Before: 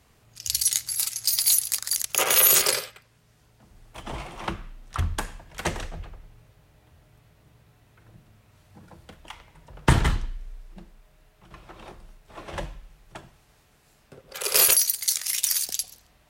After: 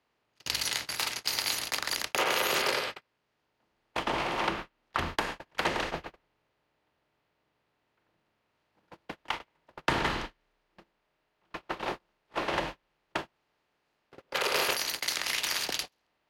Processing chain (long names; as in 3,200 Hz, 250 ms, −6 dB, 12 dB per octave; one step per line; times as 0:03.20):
compressor on every frequency bin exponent 0.6
three-way crossover with the lows and the highs turned down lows −18 dB, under 240 Hz, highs −21 dB, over 4,200 Hz
sine wavefolder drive 4 dB, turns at −5.5 dBFS
noise gate −26 dBFS, range −39 dB
downward compressor 2.5 to 1, threshold −31 dBFS, peak gain reduction 13.5 dB